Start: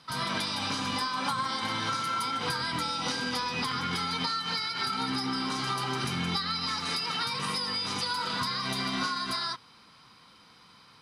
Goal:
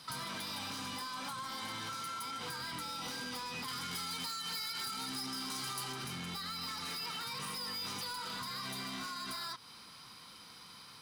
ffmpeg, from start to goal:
-filter_complex "[0:a]asoftclip=type=tanh:threshold=-28dB,acrossover=split=3300[a][b];[b]acompressor=threshold=-41dB:ratio=4:attack=1:release=60[c];[a][c]amix=inputs=2:normalize=0,asettb=1/sr,asplit=3[d][e][f];[d]atrim=end=3.684[g];[e]atrim=start=3.68:end=5.93,asetpts=PTS-STARTPTS,afade=t=in:d=0.004:c=qsin,afade=t=out:st=2.246:d=0.004:c=qsin,highshelf=f=4.3k:g=8.5[h];[f]atrim=start=5.926[i];[g][h]acrossfade=d=0.004:c1=hsin:c2=qsin[j];[j][i]acrossfade=d=0.004:c1=qsin:c2=hsin,acompressor=threshold=-41dB:ratio=6,aemphasis=mode=production:type=50fm"

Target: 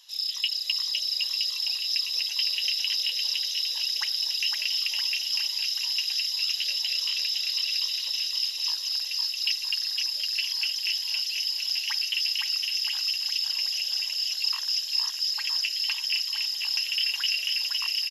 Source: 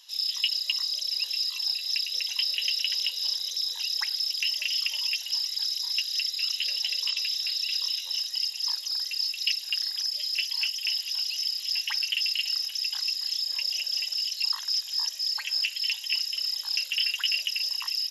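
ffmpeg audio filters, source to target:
-af "bandreject=f=50:t=h:w=6,bandreject=f=100:t=h:w=6,bandreject=f=150:t=h:w=6,bandreject=f=200:t=h:w=6,bandreject=f=250:t=h:w=6,aecho=1:1:510|969|1382|1754|2089:0.631|0.398|0.251|0.158|0.1,volume=-1dB"

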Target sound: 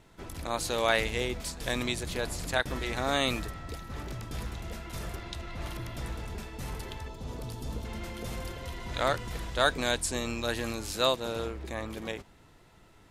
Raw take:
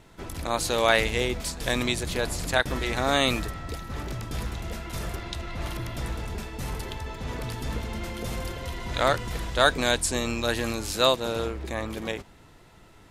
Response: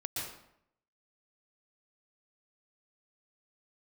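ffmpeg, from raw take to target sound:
-filter_complex "[0:a]asettb=1/sr,asplit=3[a][b][c];[a]atrim=end=7.084[d];[b]atrim=start=7.08:end=7.85,asetpts=PTS-STARTPTS,afade=t=in:d=0.004:c=qsin,afade=t=out:st=0.766:d=0.004:c=qsin,equalizer=f=1.9k:w=1.1:g=-10.5[e];[c]atrim=start=7.846[f];[d][e]acrossfade=d=0.004:c1=hsin:c2=qsin[g];[g][f]acrossfade=d=0.004:c1=qsin:c2=hsin,volume=-5dB"

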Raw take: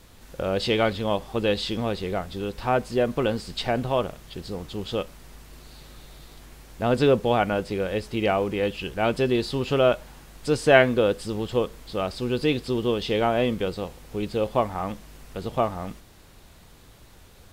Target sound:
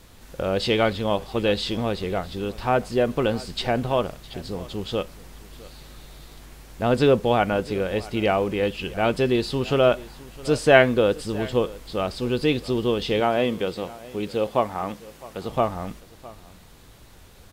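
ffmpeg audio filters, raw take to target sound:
-filter_complex "[0:a]asettb=1/sr,asplit=3[a][b][c];[a]atrim=end=13.204[d];[b]atrim=start=13.2:end=15.49,asetpts=PTS-STARTPTS,afade=t=in:d=0.004:c=qsin,afade=t=out:st=2.286:d=0.004:c=qsin,highpass=f=160:p=1[e];[c]atrim=start=15.486[f];[d][e]acrossfade=d=0.004:c1=hsin:c2=qsin[g];[g][f]acrossfade=d=0.004:c1=qsin:c2=hsin,aecho=1:1:660:0.1,volume=1.5dB"

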